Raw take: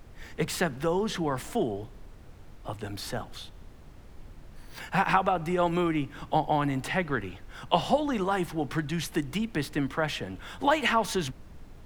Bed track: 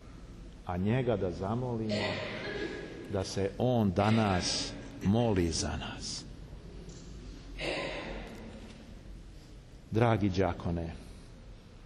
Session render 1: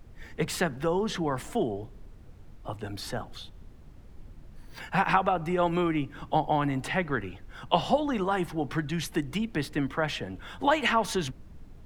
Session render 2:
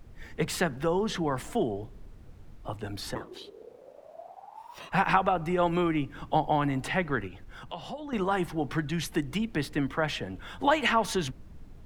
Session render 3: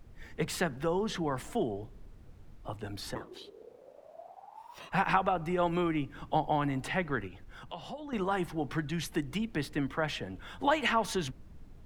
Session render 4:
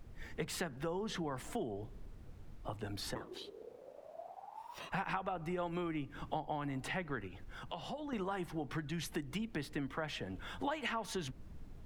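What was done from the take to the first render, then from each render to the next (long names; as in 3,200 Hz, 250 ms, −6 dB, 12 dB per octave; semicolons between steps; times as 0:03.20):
broadband denoise 6 dB, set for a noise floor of −49 dBFS
0:03.14–0:04.91: ring modulation 320 Hz → 1,100 Hz; 0:07.27–0:08.13: downward compressor 2.5 to 1, threshold −41 dBFS
level −3.5 dB
downward compressor 3 to 1, threshold −38 dBFS, peak gain reduction 12.5 dB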